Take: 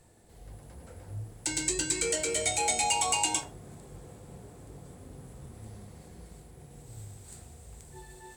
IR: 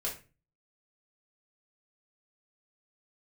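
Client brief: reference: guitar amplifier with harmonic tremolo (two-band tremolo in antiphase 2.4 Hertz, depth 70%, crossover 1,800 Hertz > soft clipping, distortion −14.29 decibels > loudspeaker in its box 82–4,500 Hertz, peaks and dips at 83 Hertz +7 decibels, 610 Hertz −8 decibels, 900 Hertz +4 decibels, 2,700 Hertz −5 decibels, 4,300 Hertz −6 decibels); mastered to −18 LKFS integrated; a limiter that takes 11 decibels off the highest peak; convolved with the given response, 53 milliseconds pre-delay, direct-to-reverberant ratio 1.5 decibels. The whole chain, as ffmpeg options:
-filter_complex "[0:a]alimiter=limit=-23.5dB:level=0:latency=1,asplit=2[link_01][link_02];[1:a]atrim=start_sample=2205,adelay=53[link_03];[link_02][link_03]afir=irnorm=-1:irlink=0,volume=-4.5dB[link_04];[link_01][link_04]amix=inputs=2:normalize=0,acrossover=split=1800[link_05][link_06];[link_05]aeval=exprs='val(0)*(1-0.7/2+0.7/2*cos(2*PI*2.4*n/s))':channel_layout=same[link_07];[link_06]aeval=exprs='val(0)*(1-0.7/2-0.7/2*cos(2*PI*2.4*n/s))':channel_layout=same[link_08];[link_07][link_08]amix=inputs=2:normalize=0,asoftclip=threshold=-29.5dB,highpass=82,equalizer=frequency=83:width_type=q:width=4:gain=7,equalizer=frequency=610:width_type=q:width=4:gain=-8,equalizer=frequency=900:width_type=q:width=4:gain=4,equalizer=frequency=2700:width_type=q:width=4:gain=-5,equalizer=frequency=4300:width_type=q:width=4:gain=-6,lowpass=frequency=4500:width=0.5412,lowpass=frequency=4500:width=1.3066,volume=25.5dB"

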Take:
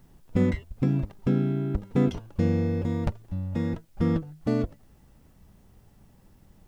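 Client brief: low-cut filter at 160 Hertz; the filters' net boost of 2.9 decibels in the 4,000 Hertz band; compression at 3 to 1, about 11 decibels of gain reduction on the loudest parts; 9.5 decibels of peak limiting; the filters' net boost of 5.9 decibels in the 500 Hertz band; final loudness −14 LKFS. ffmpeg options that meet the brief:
ffmpeg -i in.wav -af "highpass=160,equalizer=frequency=500:width_type=o:gain=7,equalizer=frequency=4000:width_type=o:gain=3.5,acompressor=threshold=-32dB:ratio=3,volume=24.5dB,alimiter=limit=-2.5dB:level=0:latency=1" out.wav

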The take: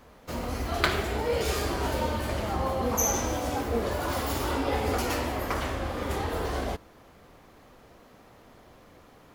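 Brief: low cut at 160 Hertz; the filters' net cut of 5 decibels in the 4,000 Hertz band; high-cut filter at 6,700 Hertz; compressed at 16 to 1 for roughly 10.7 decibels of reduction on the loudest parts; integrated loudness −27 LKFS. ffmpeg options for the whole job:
ffmpeg -i in.wav -af "highpass=160,lowpass=6700,equalizer=frequency=4000:width_type=o:gain=-6,acompressor=threshold=-31dB:ratio=16,volume=9dB" out.wav

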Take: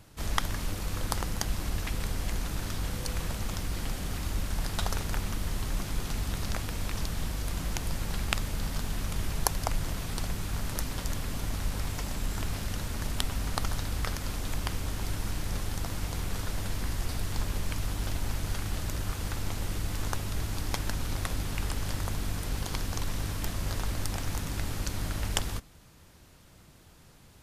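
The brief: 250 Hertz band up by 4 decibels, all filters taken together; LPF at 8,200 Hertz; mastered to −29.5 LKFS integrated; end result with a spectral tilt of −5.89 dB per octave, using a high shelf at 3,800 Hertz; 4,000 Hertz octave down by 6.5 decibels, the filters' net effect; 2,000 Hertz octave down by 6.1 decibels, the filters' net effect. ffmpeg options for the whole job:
ffmpeg -i in.wav -af "lowpass=8200,equalizer=frequency=250:width_type=o:gain=5.5,equalizer=frequency=2000:width_type=o:gain=-6,highshelf=frequency=3800:gain=-5,equalizer=frequency=4000:width_type=o:gain=-3,volume=5dB" out.wav

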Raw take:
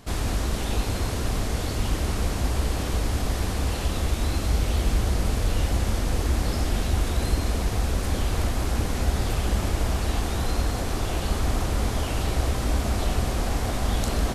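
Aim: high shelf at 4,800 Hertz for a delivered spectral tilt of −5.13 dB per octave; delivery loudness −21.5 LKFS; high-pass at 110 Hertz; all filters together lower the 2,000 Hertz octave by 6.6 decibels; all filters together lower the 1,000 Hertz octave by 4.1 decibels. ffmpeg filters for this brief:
ffmpeg -i in.wav -af "highpass=110,equalizer=frequency=1000:width_type=o:gain=-4,equalizer=frequency=2000:width_type=o:gain=-6.5,highshelf=frequency=4800:gain=-4.5,volume=10dB" out.wav

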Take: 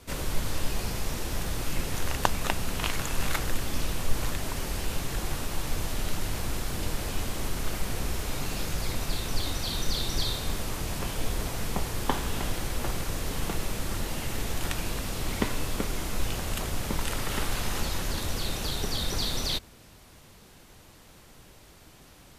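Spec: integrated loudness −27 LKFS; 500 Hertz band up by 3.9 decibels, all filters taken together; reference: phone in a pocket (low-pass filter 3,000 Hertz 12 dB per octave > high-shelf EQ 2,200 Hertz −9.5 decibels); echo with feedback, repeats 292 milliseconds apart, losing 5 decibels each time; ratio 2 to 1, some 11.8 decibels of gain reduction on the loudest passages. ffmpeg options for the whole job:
ffmpeg -i in.wav -af "equalizer=frequency=500:width_type=o:gain=5.5,acompressor=threshold=-38dB:ratio=2,lowpass=3000,highshelf=frequency=2200:gain=-9.5,aecho=1:1:292|584|876|1168|1460|1752|2044:0.562|0.315|0.176|0.0988|0.0553|0.031|0.0173,volume=13dB" out.wav

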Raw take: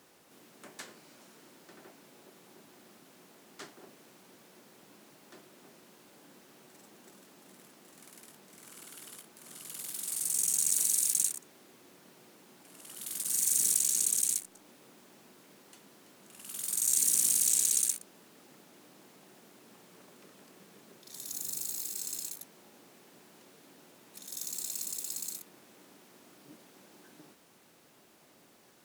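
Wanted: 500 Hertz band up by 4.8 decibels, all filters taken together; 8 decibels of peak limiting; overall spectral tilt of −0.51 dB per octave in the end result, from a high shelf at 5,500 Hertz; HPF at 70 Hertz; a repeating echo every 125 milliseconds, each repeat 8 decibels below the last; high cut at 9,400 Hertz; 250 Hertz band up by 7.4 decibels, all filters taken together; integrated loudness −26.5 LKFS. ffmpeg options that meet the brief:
ffmpeg -i in.wav -af "highpass=70,lowpass=9400,equalizer=frequency=250:width_type=o:gain=8.5,equalizer=frequency=500:width_type=o:gain=3,highshelf=frequency=5500:gain=6.5,alimiter=limit=-18dB:level=0:latency=1,aecho=1:1:125|250|375|500|625:0.398|0.159|0.0637|0.0255|0.0102,volume=3dB" out.wav

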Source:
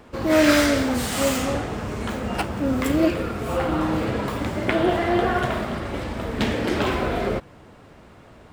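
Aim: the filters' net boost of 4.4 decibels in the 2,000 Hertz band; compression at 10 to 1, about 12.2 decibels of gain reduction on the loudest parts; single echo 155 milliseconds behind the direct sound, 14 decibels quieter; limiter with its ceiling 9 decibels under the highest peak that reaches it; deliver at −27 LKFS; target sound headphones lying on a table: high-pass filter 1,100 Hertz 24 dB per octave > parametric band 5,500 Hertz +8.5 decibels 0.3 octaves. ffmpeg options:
ffmpeg -i in.wav -af "equalizer=frequency=2000:width_type=o:gain=5.5,acompressor=threshold=-24dB:ratio=10,alimiter=limit=-20dB:level=0:latency=1,highpass=frequency=1100:width=0.5412,highpass=frequency=1100:width=1.3066,equalizer=frequency=5500:width_type=o:width=0.3:gain=8.5,aecho=1:1:155:0.2,volume=7dB" out.wav

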